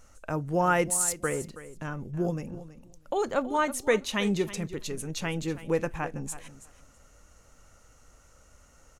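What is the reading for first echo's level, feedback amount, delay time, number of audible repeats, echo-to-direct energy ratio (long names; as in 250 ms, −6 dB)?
−15.0 dB, 15%, 325 ms, 2, −15.0 dB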